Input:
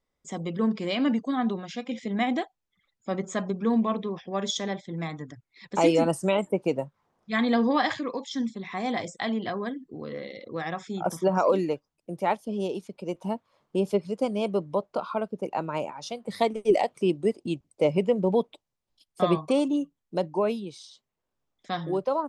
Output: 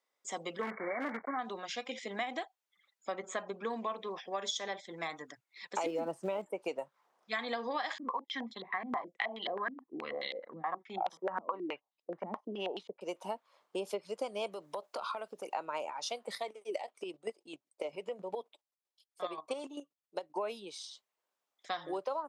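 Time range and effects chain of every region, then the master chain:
0.61–1.39 block floating point 3-bit + brick-wall FIR low-pass 2300 Hz + hard clip -18.5 dBFS
3.12–3.65 LPF 6900 Hz + bell 5400 Hz -9.5 dB 0.54 oct
5.86–6.46 block floating point 5-bit + tilt -4.5 dB/oct
7.98–13.01 gate -44 dBFS, range -10 dB + comb 1 ms, depth 35% + stepped low-pass 9.4 Hz 220–3700 Hz
14.52–15.53 high shelf 3700 Hz +9.5 dB + compressor 12:1, threshold -31 dBFS
16.35–20.36 flange 1.1 Hz, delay 1.3 ms, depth 2.3 ms, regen -60% + chopper 7.6 Hz, depth 60%, duty 20%
whole clip: HPF 590 Hz 12 dB/oct; compressor 6:1, threshold -34 dBFS; gain +1 dB

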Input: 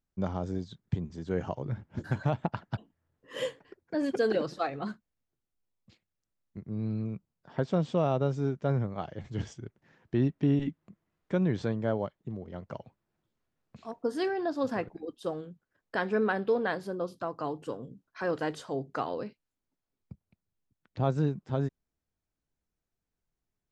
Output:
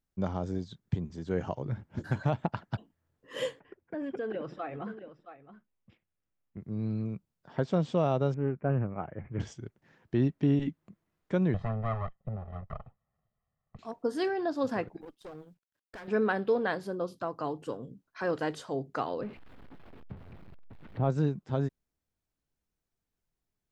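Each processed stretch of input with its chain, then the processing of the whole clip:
3.6–6.61 echo 0.668 s -18.5 dB + compressor 2.5:1, threshold -35 dBFS + polynomial smoothing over 25 samples
8.34–9.4 Chebyshev low-pass 2400 Hz, order 5 + Doppler distortion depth 0.25 ms
11.54–13.79 minimum comb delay 1 ms + LPF 1600 Hz + comb 1.6 ms, depth 78%
15.01–16.08 G.711 law mismatch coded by A + compressor 2.5:1, threshold -35 dBFS + tube stage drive 40 dB, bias 0.65
19.21–21.1 zero-crossing step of -40.5 dBFS + air absorption 460 m
whole clip: dry

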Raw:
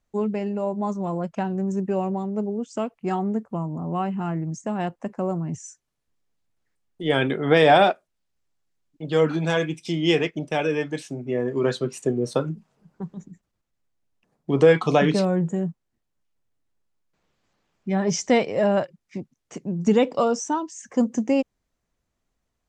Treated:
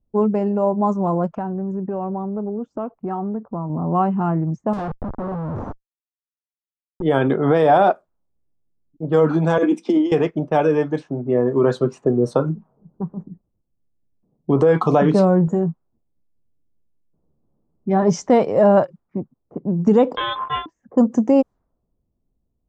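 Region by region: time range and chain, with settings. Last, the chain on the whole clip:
1.33–3.7 high shelf 2900 Hz +11.5 dB + compressor 4:1, threshold -30 dBFS
4.73–7.02 notch 420 Hz, Q 8.1 + Schmitt trigger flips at -41 dBFS
9.58–10.12 steep high-pass 200 Hz 96 dB/oct + low shelf 420 Hz +8 dB + negative-ratio compressor -24 dBFS
15.46–18.03 LPF 7400 Hz 24 dB/oct + doubler 13 ms -10 dB
20.16–20.66 sample sorter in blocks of 16 samples + inverted band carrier 3800 Hz
whole clip: limiter -13 dBFS; resonant high shelf 1600 Hz -10 dB, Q 1.5; low-pass opened by the level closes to 340 Hz, open at -21 dBFS; gain +6.5 dB

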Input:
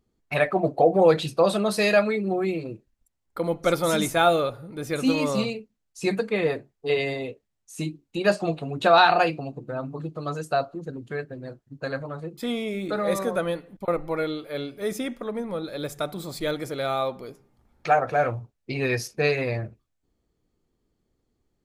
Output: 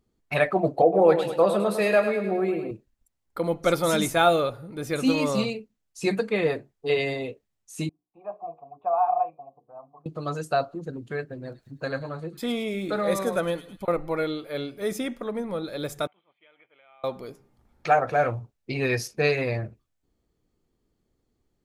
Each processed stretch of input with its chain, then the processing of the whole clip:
0.82–2.71 HPF 200 Hz + bell 5400 Hz -12 dB 1.6 oct + feedback echo 0.104 s, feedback 54%, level -9 dB
7.89–10.06 vocal tract filter a + notches 60/120/180/240/300/360/420/480/540 Hz
11.42–13.92 upward compressor, threshold -38 dBFS + thin delay 0.106 s, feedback 49%, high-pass 2900 Hz, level -9 dB
16.07–17.04 differentiator + compressor, threshold -47 dBFS + rippled Chebyshev low-pass 3200 Hz, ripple 6 dB
whole clip: dry

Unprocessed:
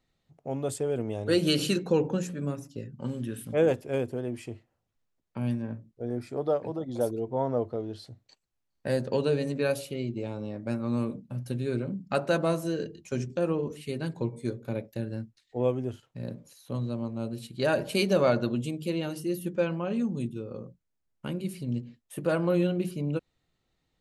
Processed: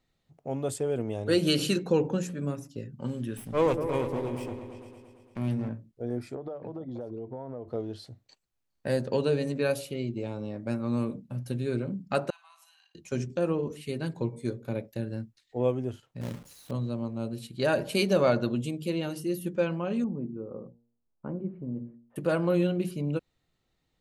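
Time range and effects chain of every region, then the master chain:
3.37–5.69 minimum comb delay 0.37 ms + repeats that get brighter 0.113 s, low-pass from 400 Hz, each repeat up 2 oct, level -6 dB
6.35–7.68 notches 50/100/150 Hz + compressor 12:1, threshold -32 dBFS + tape spacing loss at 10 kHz 27 dB
12.3–12.95 compressor 12:1, threshold -38 dBFS + rippled Chebyshev high-pass 740 Hz, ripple 9 dB + flutter echo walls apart 9.4 m, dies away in 0.37 s
16.21–16.71 companded quantiser 4-bit + low shelf 120 Hz +8 dB + core saturation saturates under 280 Hz
20.04–22.16 LPF 1200 Hz 24 dB/oct + bell 110 Hz -6.5 dB 0.8 oct + de-hum 117.7 Hz, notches 8
whole clip: dry

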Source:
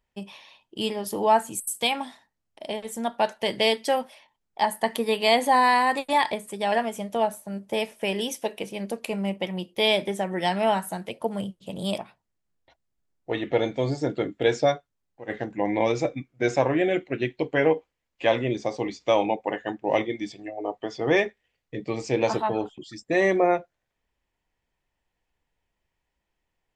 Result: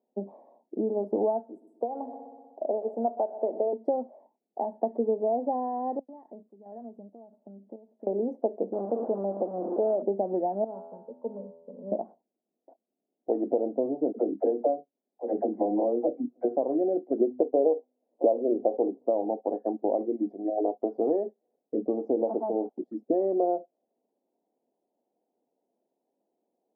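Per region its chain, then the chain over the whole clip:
1.43–3.73 HPF 360 Hz + multi-head echo 62 ms, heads first and second, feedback 65%, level -20 dB
5.99–8.07 bell 620 Hz -13.5 dB 2.6 oct + compressor 4:1, threshold -47 dBFS + chopper 1.5 Hz, depth 60%, duty 65%
8.73–10.02 delta modulation 32 kbps, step -26 dBFS + LPF 1500 Hz 24 dB/oct + tilt +3 dB/oct
10.64–11.92 G.711 law mismatch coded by A + fixed phaser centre 480 Hz, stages 8 + resonator 83 Hz, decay 0.96 s, mix 80%
14.12–16.45 bell 120 Hz -12.5 dB 0.3 oct + doubler 25 ms -12.5 dB + dispersion lows, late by 53 ms, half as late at 420 Hz
17.18–19.06 steep low-pass 1200 Hz + bell 550 Hz +13 dB 2.3 oct + de-hum 125.7 Hz, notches 2
whole clip: compressor 6:1, threshold -31 dBFS; elliptic band-pass 230–720 Hz, stop band 60 dB; gain +9 dB

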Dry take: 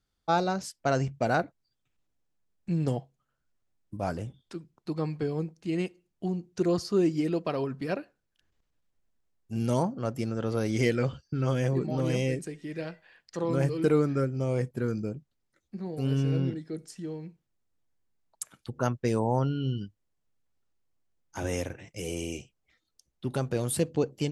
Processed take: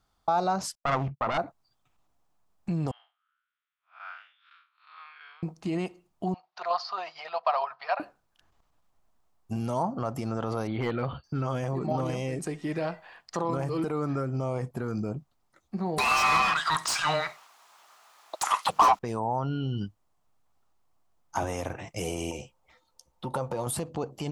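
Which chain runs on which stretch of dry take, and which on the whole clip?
0.75–1.38 self-modulated delay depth 0.88 ms + LPF 2500 Hz + gate -43 dBFS, range -37 dB
2.91–5.43 time blur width 0.151 s + elliptic band-pass 1400–3500 Hz, stop band 80 dB
6.34–8 elliptic band-pass 700–4600 Hz + tremolo saw down 11 Hz, depth 45%
10.67–11.24 brick-wall FIR low-pass 4600 Hz + overloaded stage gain 18 dB
15.98–18.99 HPF 1200 Hz + frequency shift -320 Hz + overdrive pedal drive 36 dB, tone 4200 Hz, clips at -19 dBFS
22.31–23.67 compressor 2.5:1, threshold -42 dBFS + doubler 14 ms -13 dB + small resonant body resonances 520/900 Hz, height 16 dB, ringing for 95 ms
whole clip: compressor, threshold -29 dBFS; limiter -28.5 dBFS; band shelf 910 Hz +10 dB 1.2 oct; gain +6 dB

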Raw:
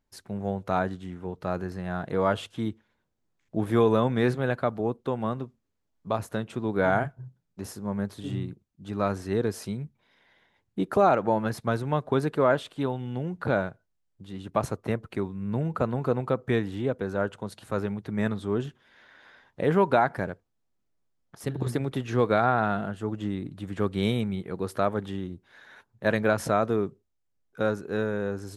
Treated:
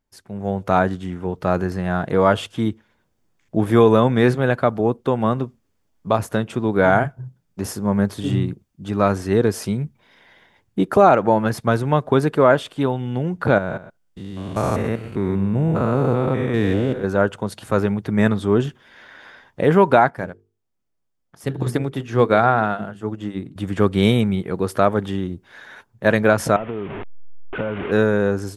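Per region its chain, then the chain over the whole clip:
13.58–17.04 stepped spectrum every 0.2 s + echo 0.124 s -14.5 dB
20.1–23.56 notches 50/100/150/200/250/300/350/400/450 Hz + upward expander, over -41 dBFS
26.56–27.92 delta modulation 16 kbps, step -33.5 dBFS + compressor 12:1, threshold -31 dBFS
whole clip: notch 4000 Hz, Q 16; AGC gain up to 11.5 dB

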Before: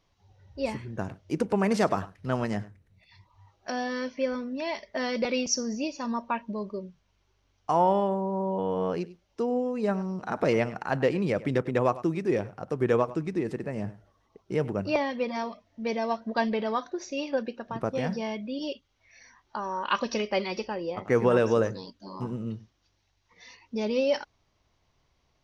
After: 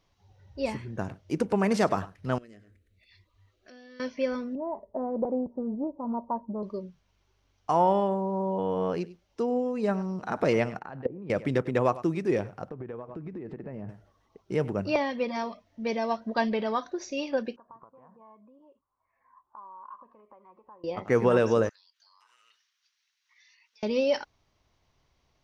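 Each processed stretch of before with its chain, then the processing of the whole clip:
2.38–4 bell 5600 Hz -6 dB 0.31 oct + compressor 4:1, threshold -47 dBFS + fixed phaser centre 360 Hz, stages 4
4.55–6.63 elliptic low-pass 960 Hz, stop band 80 dB + Doppler distortion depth 0.14 ms
10.79–11.3 level quantiser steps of 20 dB + LPF 1800 Hz 6 dB/oct + treble ducked by the level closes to 630 Hz, closed at -28 dBFS
12.69–13.89 LPF 3400 Hz + high shelf 2300 Hz -12 dB + compressor 16:1, threshold -34 dBFS
17.56–20.84 tilt +1.5 dB/oct + compressor 10:1, threshold -41 dBFS + ladder low-pass 1100 Hz, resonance 85%
21.69–23.83 HPF 1400 Hz 24 dB/oct + compressor 8:1, threshold -58 dBFS
whole clip: dry

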